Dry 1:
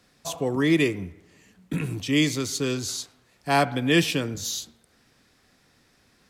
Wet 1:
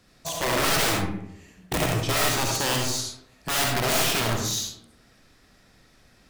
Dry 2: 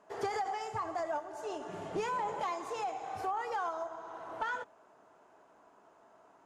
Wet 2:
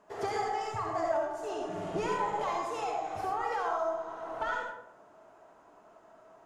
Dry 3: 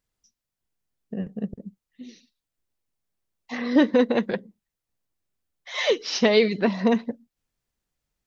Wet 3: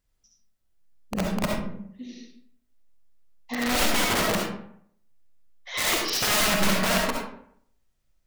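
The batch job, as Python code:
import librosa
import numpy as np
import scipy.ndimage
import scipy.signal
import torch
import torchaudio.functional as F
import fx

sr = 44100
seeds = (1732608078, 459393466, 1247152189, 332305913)

y = fx.low_shelf(x, sr, hz=120.0, db=7.5)
y = (np.mod(10.0 ** (20.5 / 20.0) * y + 1.0, 2.0) - 1.0) / 10.0 ** (20.5 / 20.0)
y = fx.rev_freeverb(y, sr, rt60_s=0.65, hf_ratio=0.6, predelay_ms=25, drr_db=-1.0)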